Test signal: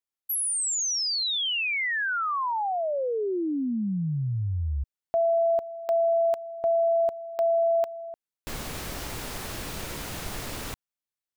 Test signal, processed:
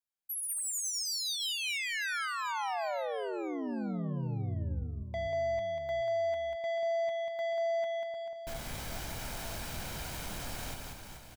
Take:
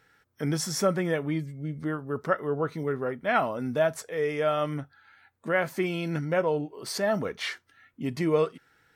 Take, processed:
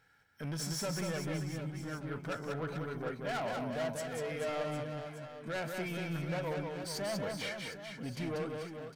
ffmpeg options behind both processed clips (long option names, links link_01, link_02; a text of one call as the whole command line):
ffmpeg -i in.wav -af "aecho=1:1:1.3:0.38,asoftclip=type=tanh:threshold=-28dB,aecho=1:1:190|437|758.1|1176|1718:0.631|0.398|0.251|0.158|0.1,volume=-6dB" out.wav